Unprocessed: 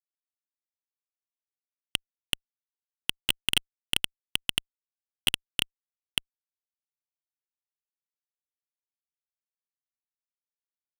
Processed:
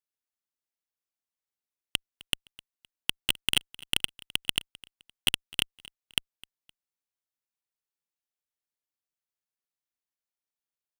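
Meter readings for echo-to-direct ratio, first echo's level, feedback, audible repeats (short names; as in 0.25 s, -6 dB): -21.5 dB, -22.0 dB, 32%, 2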